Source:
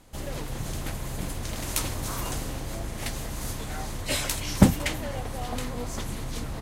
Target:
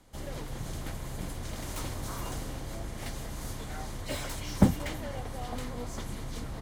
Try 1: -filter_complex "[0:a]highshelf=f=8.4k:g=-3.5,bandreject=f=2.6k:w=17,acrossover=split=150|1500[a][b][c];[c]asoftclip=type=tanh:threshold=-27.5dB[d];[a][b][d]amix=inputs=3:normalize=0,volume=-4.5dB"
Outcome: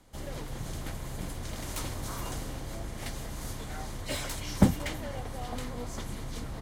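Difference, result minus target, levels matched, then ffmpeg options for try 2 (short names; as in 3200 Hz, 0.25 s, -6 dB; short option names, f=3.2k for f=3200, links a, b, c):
soft clip: distortion -4 dB
-filter_complex "[0:a]highshelf=f=8.4k:g=-3.5,bandreject=f=2.6k:w=17,acrossover=split=150|1500[a][b][c];[c]asoftclip=type=tanh:threshold=-33.5dB[d];[a][b][d]amix=inputs=3:normalize=0,volume=-4.5dB"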